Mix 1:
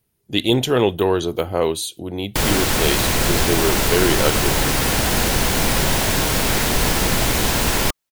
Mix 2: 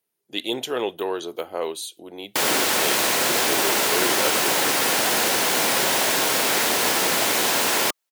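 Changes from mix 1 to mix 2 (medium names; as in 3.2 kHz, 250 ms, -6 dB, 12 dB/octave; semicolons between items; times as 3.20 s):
speech -6.5 dB; master: add high-pass 370 Hz 12 dB/octave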